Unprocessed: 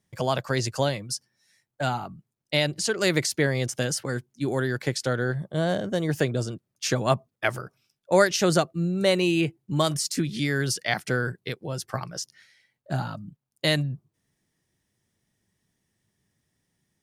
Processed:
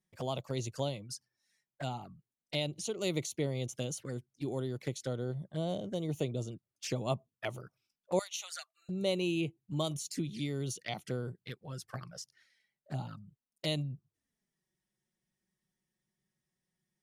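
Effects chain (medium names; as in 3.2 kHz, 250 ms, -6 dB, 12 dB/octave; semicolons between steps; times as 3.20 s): 8.19–8.89 s: Bessel high-pass 1.5 kHz, order 6; touch-sensitive flanger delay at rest 5.5 ms, full sweep at -24.5 dBFS; trim -9 dB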